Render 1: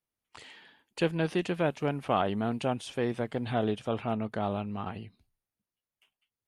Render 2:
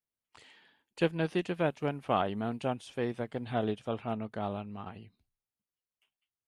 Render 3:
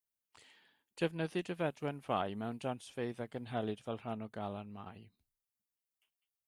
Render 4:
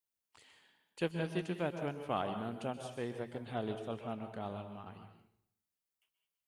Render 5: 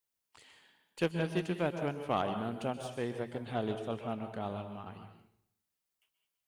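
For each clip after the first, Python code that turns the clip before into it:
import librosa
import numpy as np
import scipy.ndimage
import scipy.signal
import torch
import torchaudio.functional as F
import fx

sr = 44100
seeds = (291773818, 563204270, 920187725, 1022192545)

y1 = fx.upward_expand(x, sr, threshold_db=-37.0, expansion=1.5)
y2 = fx.high_shelf(y1, sr, hz=7900.0, db=11.0)
y2 = F.gain(torch.from_numpy(y2), -6.0).numpy()
y3 = fx.rev_plate(y2, sr, seeds[0], rt60_s=0.69, hf_ratio=0.8, predelay_ms=115, drr_db=7.0)
y3 = F.gain(torch.from_numpy(y3), -1.0).numpy()
y4 = fx.tracing_dist(y3, sr, depth_ms=0.033)
y4 = F.gain(torch.from_numpy(y4), 3.5).numpy()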